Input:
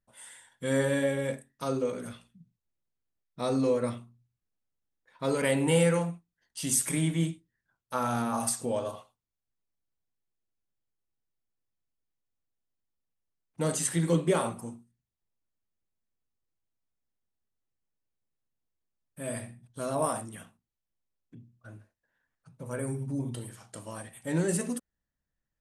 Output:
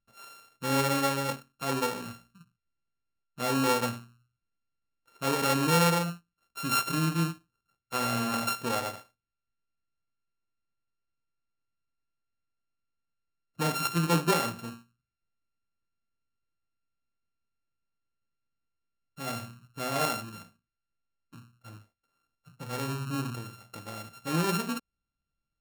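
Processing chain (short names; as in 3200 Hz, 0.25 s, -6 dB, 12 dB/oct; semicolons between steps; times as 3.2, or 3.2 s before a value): sample sorter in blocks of 32 samples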